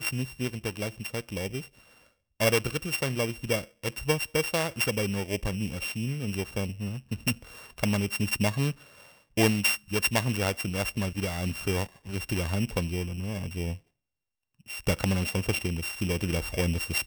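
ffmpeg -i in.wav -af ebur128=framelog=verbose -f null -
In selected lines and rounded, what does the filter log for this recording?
Integrated loudness:
  I:         -29.3 LUFS
  Threshold: -39.6 LUFS
Loudness range:
  LRA:         4.3 LU
  Threshold: -49.6 LUFS
  LRA low:   -31.7 LUFS
  LRA high:  -27.4 LUFS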